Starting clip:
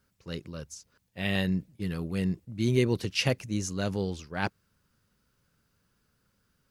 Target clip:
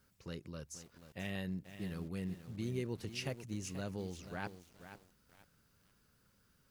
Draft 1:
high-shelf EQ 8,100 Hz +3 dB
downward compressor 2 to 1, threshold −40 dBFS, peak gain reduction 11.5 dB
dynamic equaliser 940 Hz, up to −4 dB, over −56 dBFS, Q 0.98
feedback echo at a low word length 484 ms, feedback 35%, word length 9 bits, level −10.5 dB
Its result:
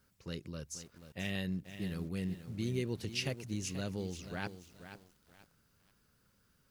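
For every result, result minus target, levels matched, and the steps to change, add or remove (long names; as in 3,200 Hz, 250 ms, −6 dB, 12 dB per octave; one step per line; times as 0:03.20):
downward compressor: peak gain reduction −3.5 dB; 1,000 Hz band −3.0 dB
change: downward compressor 2 to 1, threshold −47 dBFS, peak gain reduction 15 dB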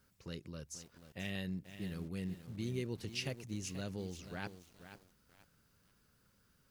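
1,000 Hz band −3.0 dB
change: dynamic equaliser 3,800 Hz, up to −4 dB, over −56 dBFS, Q 0.98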